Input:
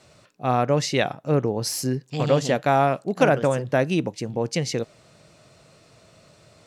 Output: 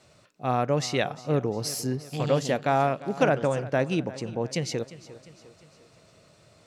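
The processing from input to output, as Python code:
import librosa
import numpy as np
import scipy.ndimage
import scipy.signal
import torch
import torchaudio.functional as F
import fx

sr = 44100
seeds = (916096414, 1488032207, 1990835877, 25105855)

p1 = fx.lowpass(x, sr, hz=8900.0, slope=12, at=(2.57, 4.48))
p2 = p1 + fx.echo_feedback(p1, sr, ms=351, feedback_pct=50, wet_db=-17.5, dry=0)
y = p2 * 10.0 ** (-4.0 / 20.0)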